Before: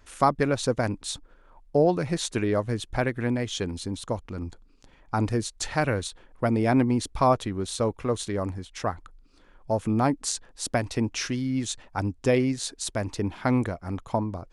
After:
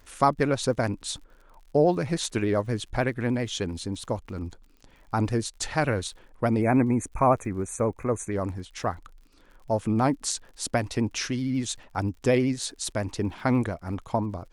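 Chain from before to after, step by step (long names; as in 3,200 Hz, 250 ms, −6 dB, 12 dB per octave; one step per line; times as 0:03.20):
gain on a spectral selection 0:06.61–0:08.32, 2,600–5,900 Hz −29 dB
pitch vibrato 13 Hz 53 cents
surface crackle 63 per second −46 dBFS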